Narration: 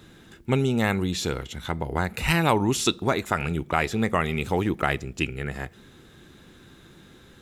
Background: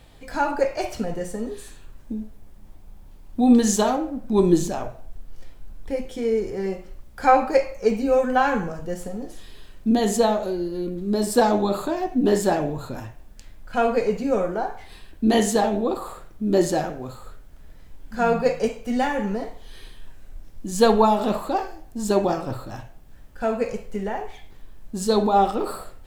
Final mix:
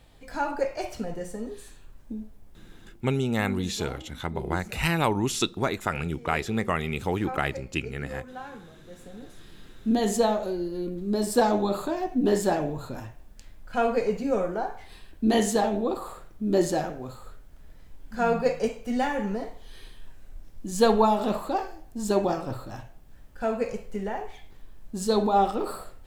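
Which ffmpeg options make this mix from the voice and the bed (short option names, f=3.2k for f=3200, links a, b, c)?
-filter_complex "[0:a]adelay=2550,volume=-3dB[a];[1:a]volume=11.5dB,afade=t=out:st=2.72:d=0.56:silence=0.177828,afade=t=in:st=8.81:d=1.23:silence=0.141254[b];[a][b]amix=inputs=2:normalize=0"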